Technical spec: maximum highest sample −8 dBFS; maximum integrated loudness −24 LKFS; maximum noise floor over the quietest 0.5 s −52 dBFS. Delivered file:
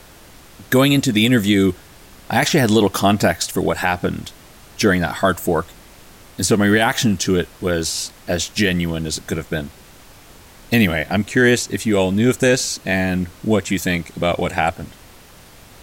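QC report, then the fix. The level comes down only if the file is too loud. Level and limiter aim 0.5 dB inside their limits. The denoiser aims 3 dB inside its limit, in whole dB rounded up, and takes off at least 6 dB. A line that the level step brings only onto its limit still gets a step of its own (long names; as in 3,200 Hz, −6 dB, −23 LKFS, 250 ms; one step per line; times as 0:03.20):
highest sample −5.0 dBFS: out of spec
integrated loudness −18.0 LKFS: out of spec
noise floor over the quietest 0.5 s −44 dBFS: out of spec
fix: broadband denoise 6 dB, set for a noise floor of −44 dBFS
level −6.5 dB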